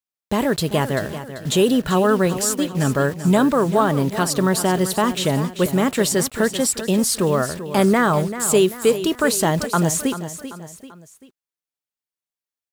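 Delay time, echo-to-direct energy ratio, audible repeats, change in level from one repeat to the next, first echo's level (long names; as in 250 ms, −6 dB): 389 ms, −11.0 dB, 3, −7.0 dB, −12.0 dB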